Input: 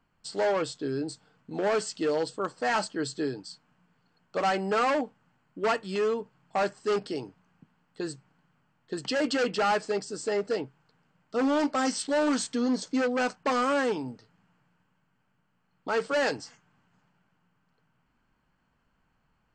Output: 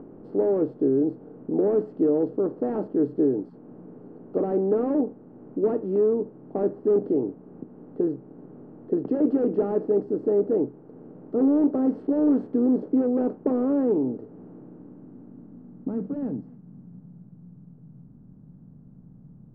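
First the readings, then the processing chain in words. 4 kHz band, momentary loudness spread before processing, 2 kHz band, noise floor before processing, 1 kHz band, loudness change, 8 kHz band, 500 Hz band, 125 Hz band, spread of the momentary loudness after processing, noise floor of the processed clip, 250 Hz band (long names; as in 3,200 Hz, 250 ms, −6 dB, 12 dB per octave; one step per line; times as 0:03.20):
below −35 dB, 12 LU, below −20 dB, −73 dBFS, −9.5 dB, +4.0 dB, below −40 dB, +5.0 dB, +6.0 dB, 10 LU, −49 dBFS, +8.5 dB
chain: compressor on every frequency bin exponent 0.6
upward compression, threshold −37 dBFS
low-pass filter sweep 370 Hz → 160 Hz, 0:14.35–0:17.31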